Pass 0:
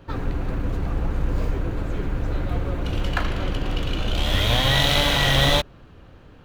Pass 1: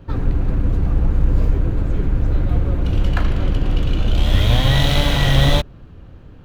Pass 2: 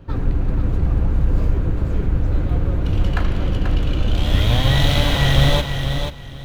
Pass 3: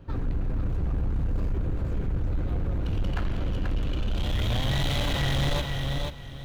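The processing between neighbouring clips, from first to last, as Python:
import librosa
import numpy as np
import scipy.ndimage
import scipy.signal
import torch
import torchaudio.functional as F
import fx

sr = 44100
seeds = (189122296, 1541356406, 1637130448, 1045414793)

y1 = fx.low_shelf(x, sr, hz=330.0, db=10.5)
y1 = y1 * 10.0 ** (-2.0 / 20.0)
y2 = fx.echo_feedback(y1, sr, ms=486, feedback_pct=22, wet_db=-7.0)
y2 = y2 * 10.0 ** (-1.0 / 20.0)
y3 = 10.0 ** (-15.5 / 20.0) * np.tanh(y2 / 10.0 ** (-15.5 / 20.0))
y3 = y3 * 10.0 ** (-5.5 / 20.0)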